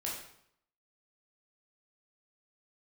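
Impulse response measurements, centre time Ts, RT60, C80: 45 ms, 0.70 s, 6.5 dB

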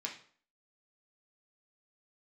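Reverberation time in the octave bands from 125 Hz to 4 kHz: 0.45, 0.50, 0.50, 0.50, 0.45, 0.40 seconds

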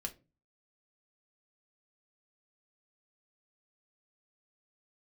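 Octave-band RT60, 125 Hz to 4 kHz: 0.55, 0.45, 0.35, 0.25, 0.20, 0.20 seconds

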